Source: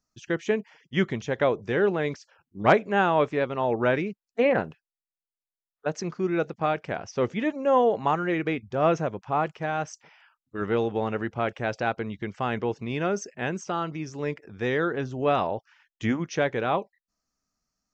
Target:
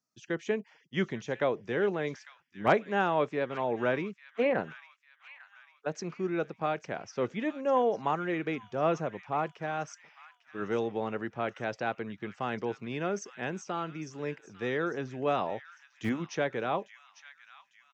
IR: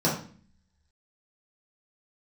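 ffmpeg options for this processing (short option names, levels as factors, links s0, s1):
-filter_complex "[0:a]acrossover=split=100|730|1100[s0][s1][s2][s3];[s0]acrusher=bits=5:mix=0:aa=0.000001[s4];[s3]aecho=1:1:850|1700|2550|3400|4250:0.224|0.103|0.0474|0.0218|0.01[s5];[s4][s1][s2][s5]amix=inputs=4:normalize=0,volume=0.531"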